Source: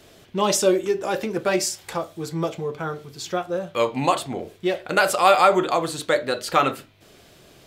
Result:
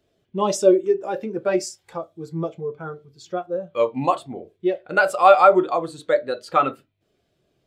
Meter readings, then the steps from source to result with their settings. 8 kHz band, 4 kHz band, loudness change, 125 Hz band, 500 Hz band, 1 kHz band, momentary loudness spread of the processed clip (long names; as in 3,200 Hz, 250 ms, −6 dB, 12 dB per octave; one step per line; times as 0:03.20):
−7.5 dB, −8.5 dB, +2.0 dB, −2.5 dB, +2.5 dB, +1.0 dB, 18 LU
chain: every bin expanded away from the loudest bin 1.5 to 1
level +2 dB